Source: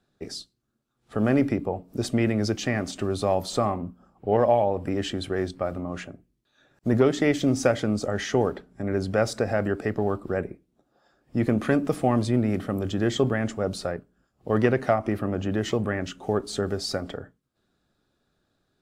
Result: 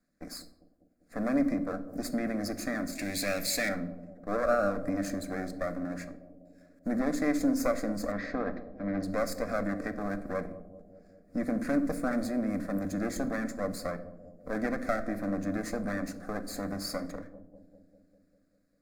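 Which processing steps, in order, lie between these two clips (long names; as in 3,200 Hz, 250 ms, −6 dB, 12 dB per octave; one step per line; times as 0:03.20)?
lower of the sound and its delayed copy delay 0.43 ms
0:02.95–0:03.69: high shelf with overshoot 1,700 Hz +11.5 dB, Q 3
0:08.12–0:09.03: low-pass filter 4,000 Hz 24 dB per octave
in parallel at +1.5 dB: brickwall limiter −17.5 dBFS, peak gain reduction 9 dB
on the sum: phaser with its sweep stopped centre 600 Hz, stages 8
bucket-brigade delay 198 ms, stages 1,024, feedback 66%, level −14.5 dB
on a send at −10 dB: convolution reverb RT60 0.75 s, pre-delay 7 ms
on the sum: level −8.5 dB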